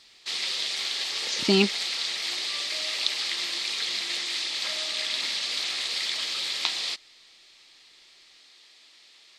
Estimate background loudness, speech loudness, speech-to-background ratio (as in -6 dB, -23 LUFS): -27.0 LUFS, -24.0 LUFS, 3.0 dB